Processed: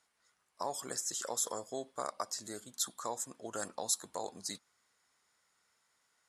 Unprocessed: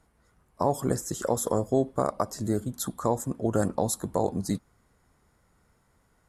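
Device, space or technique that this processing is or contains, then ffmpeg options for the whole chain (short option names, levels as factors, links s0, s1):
piezo pickup straight into a mixer: -af "lowpass=5200,aderivative,volume=2.51"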